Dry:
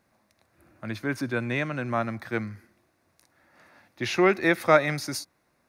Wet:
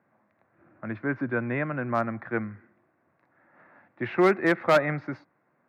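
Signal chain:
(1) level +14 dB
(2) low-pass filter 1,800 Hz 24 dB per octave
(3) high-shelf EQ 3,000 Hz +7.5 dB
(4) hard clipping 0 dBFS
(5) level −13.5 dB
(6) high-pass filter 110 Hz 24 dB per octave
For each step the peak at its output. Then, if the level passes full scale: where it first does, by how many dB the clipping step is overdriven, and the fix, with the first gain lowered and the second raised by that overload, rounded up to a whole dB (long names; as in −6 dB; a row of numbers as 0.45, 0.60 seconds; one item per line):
+7.5, +7.0, +8.0, 0.0, −13.5, −9.0 dBFS
step 1, 8.0 dB
step 1 +6 dB, step 5 −5.5 dB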